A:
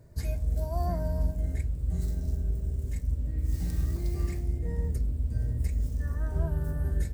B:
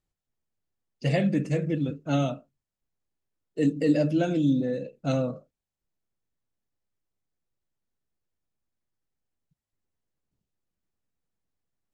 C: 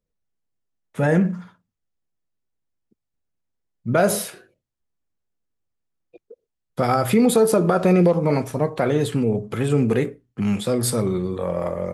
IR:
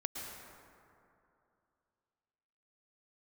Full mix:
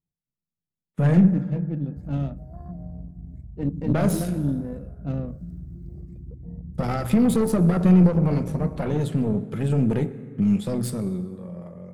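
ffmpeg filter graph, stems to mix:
-filter_complex "[0:a]afwtdn=0.0251,acompressor=threshold=-31dB:ratio=2.5,adelay=1800,volume=-6.5dB,asplit=2[a][b];[b]volume=-15.5dB[c];[1:a]adynamicsmooth=sensitivity=3:basefreq=1.2k,volume=-7dB[d];[2:a]agate=range=-26dB:threshold=-43dB:ratio=16:detection=peak,volume=-7dB,afade=t=out:st=10.67:d=0.71:silence=0.281838,asplit=2[e][f];[f]volume=-12dB[g];[3:a]atrim=start_sample=2205[h];[c][g]amix=inputs=2:normalize=0[i];[i][h]afir=irnorm=-1:irlink=0[j];[a][d][e][j]amix=inputs=4:normalize=0,aeval=exprs='(tanh(11.2*val(0)+0.75)-tanh(0.75))/11.2':c=same,equalizer=f=170:t=o:w=1.3:g=15"

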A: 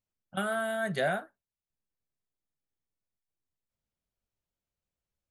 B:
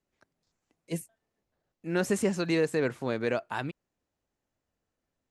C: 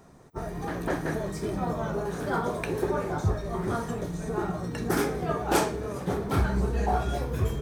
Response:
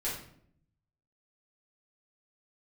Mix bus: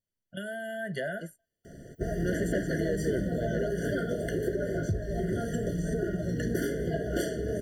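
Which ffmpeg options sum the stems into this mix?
-filter_complex "[0:a]volume=0.5dB[a];[1:a]adelay=300,volume=-13.5dB[b];[2:a]adelay=1650,volume=0.5dB[c];[a][c]amix=inputs=2:normalize=0,asuperstop=centerf=1000:order=4:qfactor=1.7,acompressor=threshold=-34dB:ratio=6,volume=0dB[d];[b][d]amix=inputs=2:normalize=0,dynaudnorm=f=720:g=3:m=7dB,afftfilt=real='re*eq(mod(floor(b*sr/1024/700),2),0)':imag='im*eq(mod(floor(b*sr/1024/700),2),0)':win_size=1024:overlap=0.75"

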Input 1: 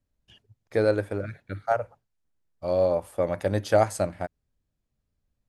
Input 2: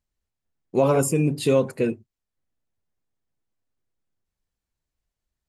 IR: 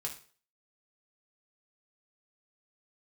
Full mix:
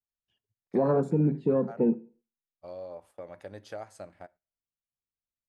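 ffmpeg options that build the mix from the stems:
-filter_complex "[0:a]lowshelf=f=210:g=-7.5,acompressor=threshold=-30dB:ratio=2,highshelf=f=9.2k:g=-11,volume=-12.5dB,asplit=2[a][b];[b]volume=-15dB[c];[1:a]afwtdn=0.0251,lowpass=2.1k,lowshelf=f=130:t=q:w=3:g=-12,volume=-4.5dB,asplit=2[d][e];[e]volume=-7.5dB[f];[2:a]atrim=start_sample=2205[g];[c][f]amix=inputs=2:normalize=0[h];[h][g]afir=irnorm=-1:irlink=0[i];[a][d][i]amix=inputs=3:normalize=0,agate=range=-10dB:threshold=-57dB:ratio=16:detection=peak,alimiter=limit=-15.5dB:level=0:latency=1:release=486"

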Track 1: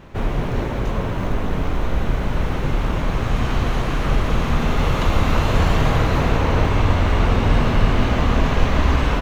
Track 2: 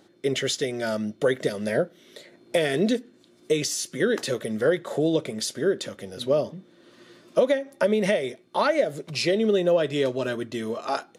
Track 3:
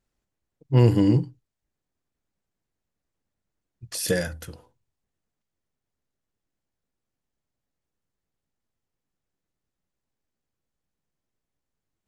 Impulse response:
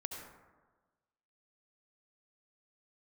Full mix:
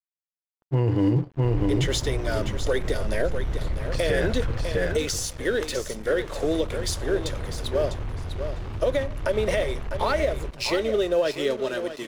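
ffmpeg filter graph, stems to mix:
-filter_complex "[0:a]bass=f=250:g=10,treble=f=4k:g=-5,asoftclip=type=hard:threshold=-10dB,acompressor=threshold=-13dB:ratio=6,adelay=1300,volume=-2dB,afade=t=out:st=4.54:d=0.5:silence=0.266073,afade=t=in:st=6.08:d=0.76:silence=0.446684,asplit=2[a][b];[b]volume=-11dB[c];[1:a]highpass=170,adelay=1450,volume=0.5dB,asplit=2[d][e];[e]volume=-10dB[f];[2:a]dynaudnorm=f=130:g=3:m=11.5dB,lowpass=2.3k,volume=-1.5dB,asplit=2[g][h];[h]volume=-3.5dB[i];[c][f][i]amix=inputs=3:normalize=0,aecho=0:1:651|1302|1953:1|0.17|0.0289[j];[a][d][g][j]amix=inputs=4:normalize=0,equalizer=f=200:t=o:w=0.67:g=-9,aeval=exprs='sgn(val(0))*max(abs(val(0))-0.01,0)':c=same,alimiter=limit=-13.5dB:level=0:latency=1:release=46"

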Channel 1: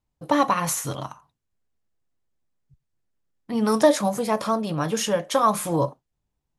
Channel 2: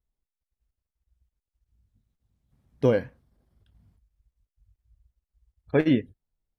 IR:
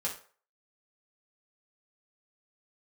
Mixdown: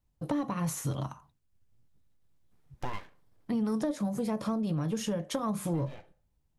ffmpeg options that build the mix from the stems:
-filter_complex "[0:a]lowshelf=f=250:g=9,acrossover=split=410[a][b];[b]acompressor=threshold=-35dB:ratio=2[c];[a][c]amix=inputs=2:normalize=0,asoftclip=type=tanh:threshold=-10dB,volume=-3dB,asplit=2[d][e];[1:a]equalizer=f=150:t=o:w=1.8:g=-10.5,acompressor=threshold=-37dB:ratio=2,aeval=exprs='abs(val(0))':c=same,volume=1dB,asplit=2[f][g];[g]volume=-17.5dB[h];[e]apad=whole_len=290239[i];[f][i]sidechaincompress=threshold=-38dB:ratio=8:attack=16:release=225[j];[2:a]atrim=start_sample=2205[k];[h][k]afir=irnorm=-1:irlink=0[l];[d][j][l]amix=inputs=3:normalize=0,acompressor=threshold=-28dB:ratio=5"

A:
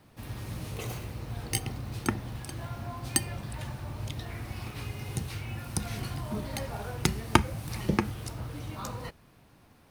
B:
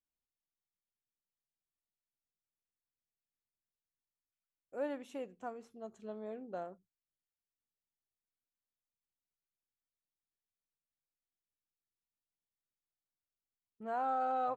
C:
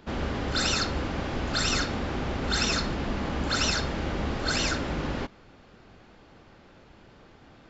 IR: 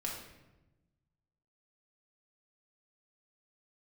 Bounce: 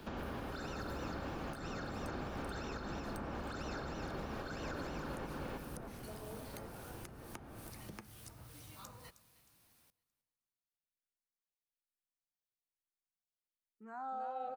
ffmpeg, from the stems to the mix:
-filter_complex "[0:a]acompressor=threshold=-29dB:ratio=6,crystalizer=i=7:c=0,volume=-18dB,asplit=2[a][b];[b]volume=-22dB[c];[1:a]asplit=2[d][e];[e]afreqshift=-1.1[f];[d][f]amix=inputs=2:normalize=1,volume=-6dB,asplit=2[g][h];[h]volume=-6dB[i];[2:a]bandreject=f=2k:w=13,alimiter=limit=-23dB:level=0:latency=1:release=114,volume=0.5dB,asplit=2[j][k];[k]volume=-5.5dB[l];[c][i][l]amix=inputs=3:normalize=0,aecho=0:1:312|624|936|1248|1560:1|0.32|0.102|0.0328|0.0105[m];[a][g][j][m]amix=inputs=4:normalize=0,acrossover=split=100|730|1800[n][o][p][q];[n]acompressor=threshold=-46dB:ratio=4[r];[o]acompressor=threshold=-39dB:ratio=4[s];[p]acompressor=threshold=-43dB:ratio=4[t];[q]acompressor=threshold=-55dB:ratio=4[u];[r][s][t][u]amix=inputs=4:normalize=0,alimiter=level_in=8.5dB:limit=-24dB:level=0:latency=1:release=326,volume=-8.5dB"

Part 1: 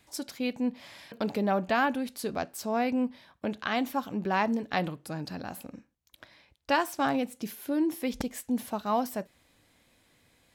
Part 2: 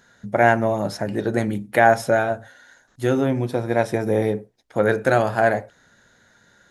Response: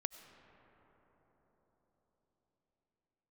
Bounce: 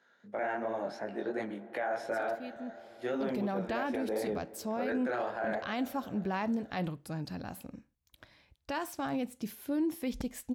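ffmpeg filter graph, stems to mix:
-filter_complex "[0:a]lowshelf=f=150:g=10,adelay=2000,volume=-5dB,afade=t=in:st=3.05:d=0.55:silence=0.281838[a];[1:a]highpass=170,acrossover=split=240 4500:gain=0.2 1 0.158[b][c][d];[b][c][d]amix=inputs=3:normalize=0,flanger=delay=18.5:depth=5.5:speed=2.8,volume=-11.5dB,asplit=2[e][f];[f]volume=-3dB[g];[2:a]atrim=start_sample=2205[h];[g][h]afir=irnorm=-1:irlink=0[i];[a][e][i]amix=inputs=3:normalize=0,alimiter=level_in=1dB:limit=-24dB:level=0:latency=1:release=17,volume=-1dB"

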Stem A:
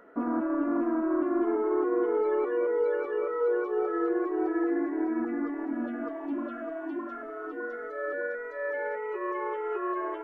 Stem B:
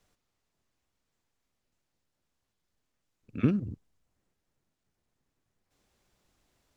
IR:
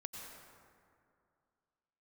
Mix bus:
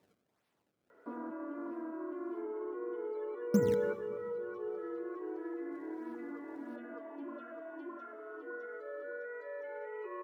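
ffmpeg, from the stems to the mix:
-filter_complex "[0:a]acrossover=split=300|3000[a][b][c];[b]acompressor=threshold=-33dB:ratio=6[d];[a][d][c]amix=inputs=3:normalize=0,aecho=1:1:2:0.39,adelay=900,volume=-1dB,asplit=2[e][f];[f]volume=-18dB[g];[1:a]acrusher=samples=28:mix=1:aa=0.000001:lfo=1:lforange=44.8:lforate=1.6,volume=2dB,asplit=3[h][i][j];[h]atrim=end=2.42,asetpts=PTS-STARTPTS,afade=t=out:st=2.416:d=0.004:c=hsin[k];[i]atrim=start=2.42:end=3.54,asetpts=PTS-STARTPTS,volume=0[l];[j]atrim=start=3.54,asetpts=PTS-STARTPTS,afade=t=in:d=0.004:c=hsin[m];[k][l][m]concat=n=3:v=0:a=1,asplit=3[n][o][p];[o]volume=-6.5dB[q];[p]apad=whole_len=491277[r];[e][r]sidechaingate=range=-10dB:threshold=-59dB:ratio=16:detection=peak[s];[2:a]atrim=start_sample=2205[t];[g][q]amix=inputs=2:normalize=0[u];[u][t]afir=irnorm=-1:irlink=0[v];[s][n][v]amix=inputs=3:normalize=0,highpass=160"

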